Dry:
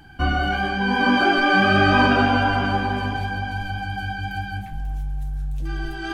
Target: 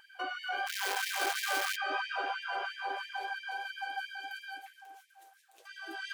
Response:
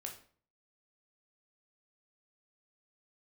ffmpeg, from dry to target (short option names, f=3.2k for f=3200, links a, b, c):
-filter_complex "[0:a]asettb=1/sr,asplit=3[a][b][c];[a]atrim=end=4.094[d];[b]atrim=start=4.09:end=4.72,asetpts=PTS-STARTPTS,afade=t=in:d=0.004:c=qsin,afade=t=out:st=0.626:d=0.004:c=qsin,equalizer=f=800:t=o:w=3:g=-5[e];[c]atrim=start=4.716[f];[d][e]acrossfade=d=0.004:c1=hsin:c2=qsin[g];[g][f]acrossfade=d=0.004:c1=qsin:c2=hsin,acompressor=threshold=-25dB:ratio=4,asplit=3[h][i][j];[h]afade=t=out:st=0.66:d=0.02[k];[i]acrusher=bits=5:dc=4:mix=0:aa=0.000001,afade=t=in:st=0.66:d=0.02,afade=t=out:st=1.75:d=0.02[l];[j]afade=t=in:st=1.75:d=0.02[m];[k][l][m]amix=inputs=3:normalize=0,afftfilt=real='re*gte(b*sr/1024,300*pow(1700/300,0.5+0.5*sin(2*PI*3*pts/sr)))':imag='im*gte(b*sr/1024,300*pow(1700/300,0.5+0.5*sin(2*PI*3*pts/sr)))':win_size=1024:overlap=0.75,volume=-5dB"